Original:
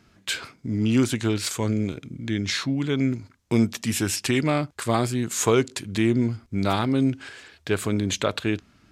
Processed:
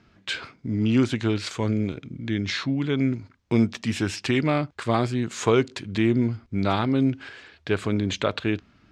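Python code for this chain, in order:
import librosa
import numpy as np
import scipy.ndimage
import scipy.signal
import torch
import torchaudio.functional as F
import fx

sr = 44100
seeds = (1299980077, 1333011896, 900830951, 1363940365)

y = scipy.signal.sosfilt(scipy.signal.butter(2, 4300.0, 'lowpass', fs=sr, output='sos'), x)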